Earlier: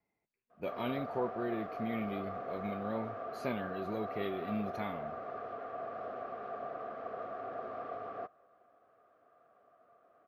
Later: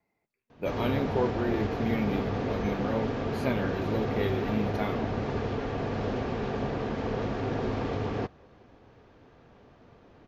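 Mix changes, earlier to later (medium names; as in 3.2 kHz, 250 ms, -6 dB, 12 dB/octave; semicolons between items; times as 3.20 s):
speech +6.5 dB; background: remove two resonant band-passes 910 Hz, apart 0.8 oct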